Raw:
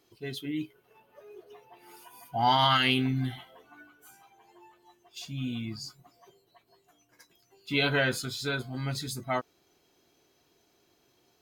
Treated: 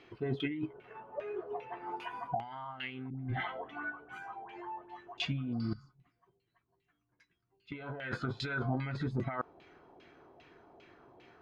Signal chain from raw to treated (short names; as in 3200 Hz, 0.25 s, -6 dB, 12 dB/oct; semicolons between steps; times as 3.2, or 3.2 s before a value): 5.55–5.85 spectral repair 810–5300 Hz after; 5.73–7.72 passive tone stack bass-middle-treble 6-0-2; negative-ratio compressor -39 dBFS, ratio -1; LFO low-pass saw down 2.5 Hz 700–2700 Hz; 3.1–5.18 dispersion highs, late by 0.1 s, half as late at 840 Hz; gain +1 dB